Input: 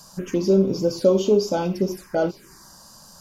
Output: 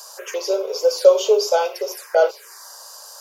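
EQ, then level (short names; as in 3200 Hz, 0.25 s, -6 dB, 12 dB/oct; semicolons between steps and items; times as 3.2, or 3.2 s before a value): Chebyshev high-pass 440 Hz, order 6; high shelf 11000 Hz +5.5 dB; +7.5 dB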